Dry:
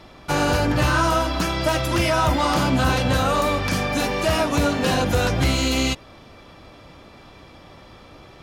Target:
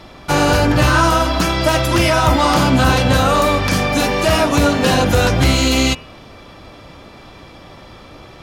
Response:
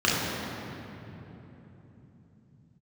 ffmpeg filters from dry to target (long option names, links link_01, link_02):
-af "bandreject=frequency=80.76:width_type=h:width=4,bandreject=frequency=161.52:width_type=h:width=4,bandreject=frequency=242.28:width_type=h:width=4,bandreject=frequency=323.04:width_type=h:width=4,bandreject=frequency=403.8:width_type=h:width=4,bandreject=frequency=484.56:width_type=h:width=4,bandreject=frequency=565.32:width_type=h:width=4,bandreject=frequency=646.08:width_type=h:width=4,bandreject=frequency=726.84:width_type=h:width=4,bandreject=frequency=807.6:width_type=h:width=4,bandreject=frequency=888.36:width_type=h:width=4,bandreject=frequency=969.12:width_type=h:width=4,bandreject=frequency=1049.88:width_type=h:width=4,bandreject=frequency=1130.64:width_type=h:width=4,bandreject=frequency=1211.4:width_type=h:width=4,bandreject=frequency=1292.16:width_type=h:width=4,bandreject=frequency=1372.92:width_type=h:width=4,bandreject=frequency=1453.68:width_type=h:width=4,bandreject=frequency=1534.44:width_type=h:width=4,bandreject=frequency=1615.2:width_type=h:width=4,bandreject=frequency=1695.96:width_type=h:width=4,bandreject=frequency=1776.72:width_type=h:width=4,bandreject=frequency=1857.48:width_type=h:width=4,bandreject=frequency=1938.24:width_type=h:width=4,bandreject=frequency=2019:width_type=h:width=4,bandreject=frequency=2099.76:width_type=h:width=4,bandreject=frequency=2180.52:width_type=h:width=4,bandreject=frequency=2261.28:width_type=h:width=4,bandreject=frequency=2342.04:width_type=h:width=4,bandreject=frequency=2422.8:width_type=h:width=4,bandreject=frequency=2503.56:width_type=h:width=4,bandreject=frequency=2584.32:width_type=h:width=4,bandreject=frequency=2665.08:width_type=h:width=4,bandreject=frequency=2745.84:width_type=h:width=4,bandreject=frequency=2826.6:width_type=h:width=4,bandreject=frequency=2907.36:width_type=h:width=4,volume=6.5dB"